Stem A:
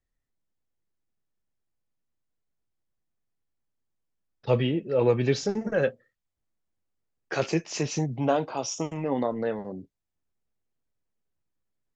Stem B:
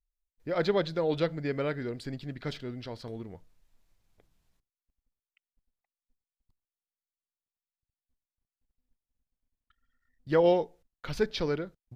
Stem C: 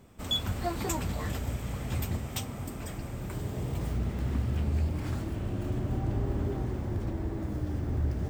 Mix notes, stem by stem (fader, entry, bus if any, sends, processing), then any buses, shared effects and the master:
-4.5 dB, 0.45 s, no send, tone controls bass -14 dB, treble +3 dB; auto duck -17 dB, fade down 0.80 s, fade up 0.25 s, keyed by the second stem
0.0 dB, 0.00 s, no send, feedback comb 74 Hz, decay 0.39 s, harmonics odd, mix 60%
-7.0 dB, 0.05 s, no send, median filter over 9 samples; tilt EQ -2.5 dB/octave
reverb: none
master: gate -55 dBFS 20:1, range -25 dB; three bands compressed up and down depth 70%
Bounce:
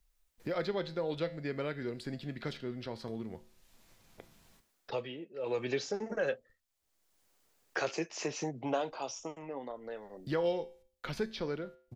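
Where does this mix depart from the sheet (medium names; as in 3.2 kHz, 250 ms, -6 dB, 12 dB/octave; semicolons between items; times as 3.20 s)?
stem C: muted; master: missing gate -55 dBFS 20:1, range -25 dB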